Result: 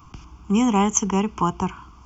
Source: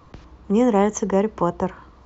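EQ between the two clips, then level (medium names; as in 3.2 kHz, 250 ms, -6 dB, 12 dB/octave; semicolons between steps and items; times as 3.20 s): treble shelf 3.7 kHz +9 dB; dynamic bell 2.6 kHz, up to +4 dB, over -45 dBFS, Q 1.5; static phaser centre 2.7 kHz, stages 8; +2.5 dB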